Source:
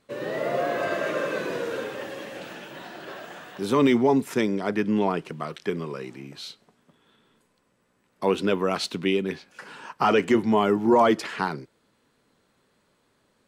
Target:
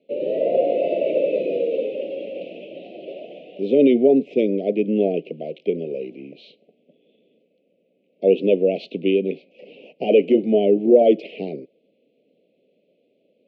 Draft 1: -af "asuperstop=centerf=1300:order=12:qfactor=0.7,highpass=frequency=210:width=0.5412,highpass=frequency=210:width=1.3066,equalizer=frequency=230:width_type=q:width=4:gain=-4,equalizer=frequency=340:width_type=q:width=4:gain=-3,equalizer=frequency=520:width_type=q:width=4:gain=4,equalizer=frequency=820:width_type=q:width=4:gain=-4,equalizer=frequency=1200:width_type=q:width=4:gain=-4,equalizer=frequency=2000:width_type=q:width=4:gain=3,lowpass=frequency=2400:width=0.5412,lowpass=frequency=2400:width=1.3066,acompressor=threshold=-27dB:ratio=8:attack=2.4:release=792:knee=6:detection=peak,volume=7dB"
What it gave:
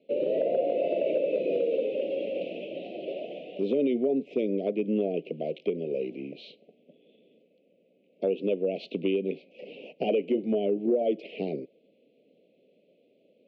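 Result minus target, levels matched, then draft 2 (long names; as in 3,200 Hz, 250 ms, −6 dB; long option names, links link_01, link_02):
downward compressor: peak gain reduction +14 dB
-af "asuperstop=centerf=1300:order=12:qfactor=0.7,highpass=frequency=210:width=0.5412,highpass=frequency=210:width=1.3066,equalizer=frequency=230:width_type=q:width=4:gain=-4,equalizer=frequency=340:width_type=q:width=4:gain=-3,equalizer=frequency=520:width_type=q:width=4:gain=4,equalizer=frequency=820:width_type=q:width=4:gain=-4,equalizer=frequency=1200:width_type=q:width=4:gain=-4,equalizer=frequency=2000:width_type=q:width=4:gain=3,lowpass=frequency=2400:width=0.5412,lowpass=frequency=2400:width=1.3066,volume=7dB"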